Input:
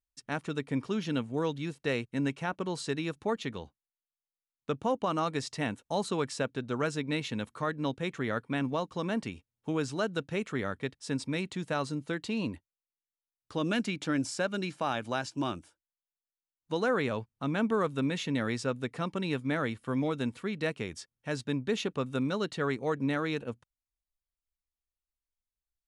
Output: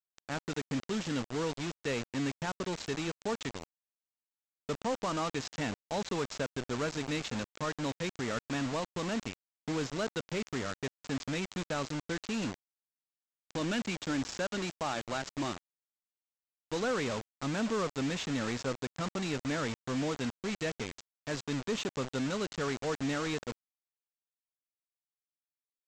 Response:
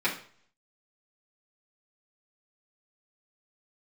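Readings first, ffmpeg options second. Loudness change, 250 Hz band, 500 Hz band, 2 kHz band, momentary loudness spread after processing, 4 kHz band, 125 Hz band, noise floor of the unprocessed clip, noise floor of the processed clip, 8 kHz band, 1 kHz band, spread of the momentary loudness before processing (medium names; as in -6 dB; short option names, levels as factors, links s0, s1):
-2.5 dB, -3.0 dB, -3.0 dB, -2.0 dB, 5 LU, +0.5 dB, -3.0 dB, under -85 dBFS, under -85 dBFS, +3.0 dB, -3.0 dB, 6 LU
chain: -af "aresample=16000,acrusher=bits=5:mix=0:aa=0.000001,aresample=44100,asoftclip=type=tanh:threshold=0.0668,volume=0.841"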